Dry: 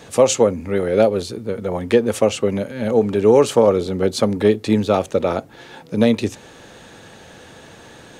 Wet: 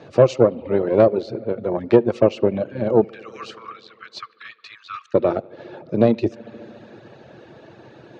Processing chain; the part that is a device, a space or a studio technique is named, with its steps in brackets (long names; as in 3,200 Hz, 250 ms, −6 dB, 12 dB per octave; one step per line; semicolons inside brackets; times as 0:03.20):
0:03.04–0:05.14: Butterworth high-pass 1,100 Hz 96 dB per octave
analogue delay pedal into a guitar amplifier (bucket-brigade delay 72 ms, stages 2,048, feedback 81%, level −15.5 dB; tube saturation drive 6 dB, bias 0.7; loudspeaker in its box 92–4,300 Hz, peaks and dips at 130 Hz +9 dB, 350 Hz +10 dB, 610 Hz +7 dB, 2,000 Hz −4 dB, 3,300 Hz −8 dB)
reverb reduction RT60 0.62 s